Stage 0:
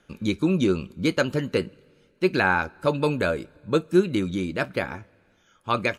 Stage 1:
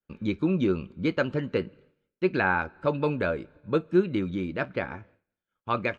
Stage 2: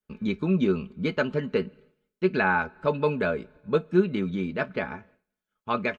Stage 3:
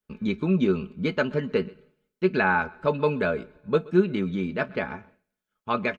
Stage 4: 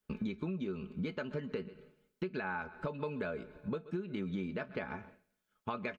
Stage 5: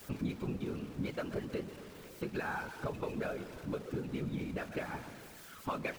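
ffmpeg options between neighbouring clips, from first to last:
ffmpeg -i in.wav -af "lowpass=2800,agate=range=-33dB:threshold=-48dB:ratio=3:detection=peak,volume=-3dB" out.wav
ffmpeg -i in.wav -af "aecho=1:1:4.7:0.59" out.wav
ffmpeg -i in.wav -af "aecho=1:1:127:0.0708,volume=1dB" out.wav
ffmpeg -i in.wav -af "alimiter=limit=-18.5dB:level=0:latency=1:release=443,acompressor=threshold=-37dB:ratio=6,volume=2dB" out.wav
ffmpeg -i in.wav -af "aeval=exprs='val(0)+0.5*0.00631*sgn(val(0))':channel_layout=same,afftfilt=real='hypot(re,im)*cos(2*PI*random(0))':imag='hypot(re,im)*sin(2*PI*random(1))':win_size=512:overlap=0.75,volume=4.5dB" out.wav

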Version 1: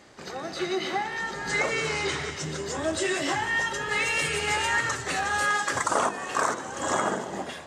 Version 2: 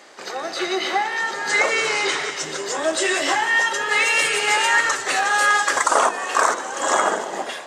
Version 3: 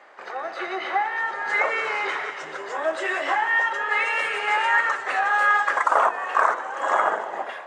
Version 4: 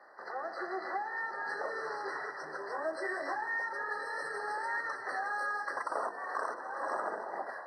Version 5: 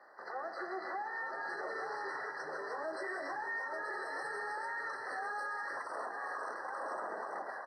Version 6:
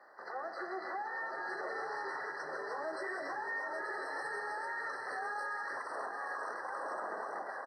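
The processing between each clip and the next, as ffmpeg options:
ffmpeg -i in.wav -af "highpass=430,volume=8dB" out.wav
ffmpeg -i in.wav -filter_complex "[0:a]acrossover=split=530 2300:gain=0.224 1 0.0794[link_01][link_02][link_03];[link_01][link_02][link_03]amix=inputs=3:normalize=0" out.wav
ffmpeg -i in.wav -filter_complex "[0:a]acrossover=split=170|480|3000[link_01][link_02][link_03][link_04];[link_03]acompressor=threshold=-29dB:ratio=6[link_05];[link_01][link_02][link_05][link_04]amix=inputs=4:normalize=0,afftfilt=real='re*eq(mod(floor(b*sr/1024/2000),2),0)':imag='im*eq(mod(floor(b*sr/1024/2000),2),0)':win_size=1024:overlap=0.75,volume=-6.5dB" out.wav
ffmpeg -i in.wav -af "aecho=1:1:878:0.447,alimiter=level_in=5.5dB:limit=-24dB:level=0:latency=1:release=23,volume=-5.5dB,volume=-2dB" out.wav
ffmpeg -i in.wav -af "aecho=1:1:780:0.316" out.wav

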